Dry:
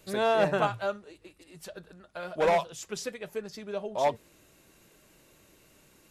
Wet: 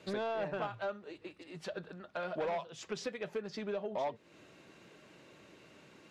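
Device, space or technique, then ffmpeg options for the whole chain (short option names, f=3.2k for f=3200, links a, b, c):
AM radio: -af "highpass=130,lowpass=3.9k,acompressor=threshold=-38dB:ratio=4,asoftclip=type=tanh:threshold=-31dB,volume=4dB"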